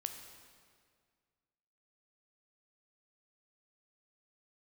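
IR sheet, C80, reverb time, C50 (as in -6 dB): 8.0 dB, 1.9 s, 7.0 dB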